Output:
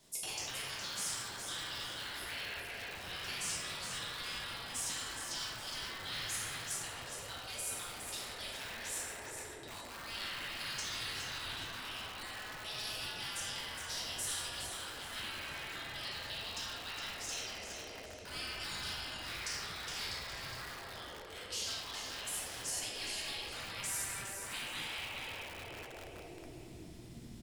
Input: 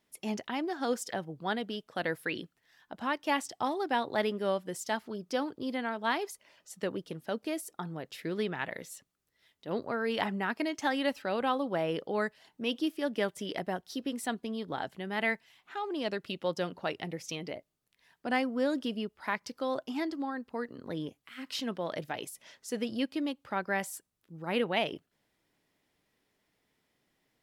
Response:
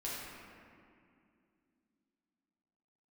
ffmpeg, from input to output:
-filter_complex "[0:a]asubboost=boost=6.5:cutoff=220[link_01];[1:a]atrim=start_sample=2205[link_02];[link_01][link_02]afir=irnorm=-1:irlink=0,afftfilt=real='re*lt(hypot(re,im),0.316)':imag='im*lt(hypot(re,im),0.316)':win_size=1024:overlap=0.75,equalizer=frequency=125:width_type=o:width=1:gain=8,equalizer=frequency=250:width_type=o:width=1:gain=-4,equalizer=frequency=2000:width_type=o:width=1:gain=-6,equalizer=frequency=4000:width_type=o:width=1:gain=4,equalizer=frequency=8000:width_type=o:width=1:gain=10,areverse,acompressor=threshold=-42dB:ratio=20,areverse,afftfilt=real='re*lt(hypot(re,im),0.00891)':imag='im*lt(hypot(re,im),0.00891)':win_size=1024:overlap=0.75,aecho=1:1:414|828|1242|1656:0.447|0.147|0.0486|0.0161,acrossover=split=250|1400[link_03][link_04][link_05];[link_04]aeval=exprs='(mod(708*val(0)+1,2)-1)/708':channel_layout=same[link_06];[link_03][link_06][link_05]amix=inputs=3:normalize=0,volume=13dB"

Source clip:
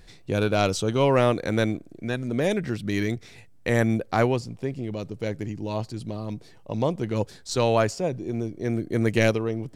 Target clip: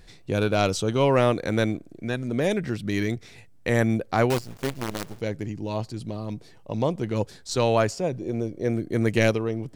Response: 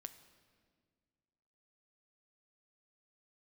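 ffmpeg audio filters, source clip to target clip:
-filter_complex "[0:a]asettb=1/sr,asplit=3[link_01][link_02][link_03];[link_01]atrim=end=4.304[link_04];[link_02]atrim=start=4.3:end=5.2,asetpts=PTS-STARTPTS,afade=type=in:duration=0.004:curve=qsin,afade=type=out:start_time=0.896:duration=0.004:curve=qsin,acrusher=bits=5:dc=4:mix=0:aa=0.000001[link_05];[link_03]atrim=start=5.196[link_06];[link_04][link_05]acrossfade=duration=0.004:curve1=hsin:curve2=qsin[link_07];[link_07][link_06]acrossfade=duration=0.004:curve1=qsin:curve2=hsin,asettb=1/sr,asplit=3[link_08][link_09][link_10];[link_08]atrim=end=8.214[link_11];[link_09]atrim=start=8.21:end=8.73,asetpts=PTS-STARTPTS,afade=type=in:duration=0.004:curve=qsin,afade=type=out:start_time=0.516:duration=0.004:curve=qsin,equalizer=frequency=520:width_type=o:width=0.32:gain=9.5[link_12];[link_10]atrim=start=8.726[link_13];[link_11][link_12]acrossfade=duration=0.004:curve1=hsin:curve2=qsin[link_14];[link_14][link_13]acrossfade=duration=0.004:curve1=qsin:curve2=hsin"

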